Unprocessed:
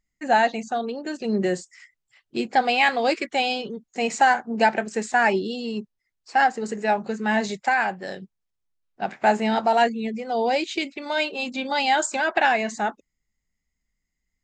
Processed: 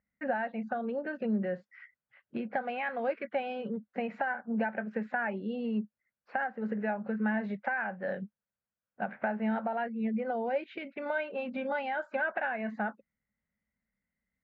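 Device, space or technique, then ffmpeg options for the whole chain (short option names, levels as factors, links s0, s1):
bass amplifier: -af "acompressor=threshold=0.0316:ratio=5,highpass=70,equalizer=f=210:t=q:w=4:g=9,equalizer=f=350:t=q:w=4:g=-7,equalizer=f=550:t=q:w=4:g=9,equalizer=f=1500:t=q:w=4:g=8,lowpass=f=2400:w=0.5412,lowpass=f=2400:w=1.3066,volume=0.631"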